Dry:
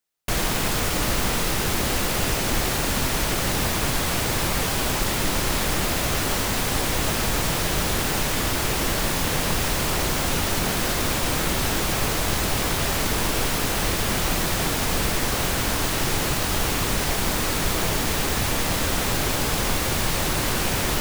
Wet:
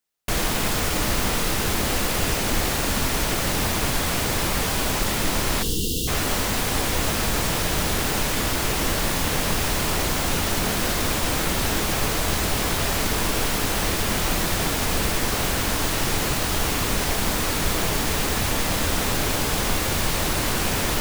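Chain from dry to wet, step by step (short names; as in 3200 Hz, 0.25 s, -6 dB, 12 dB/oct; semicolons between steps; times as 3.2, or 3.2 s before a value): spectral delete 5.62–6.08, 500–2700 Hz; two-slope reverb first 0.58 s, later 1.9 s, from -26 dB, DRR 13.5 dB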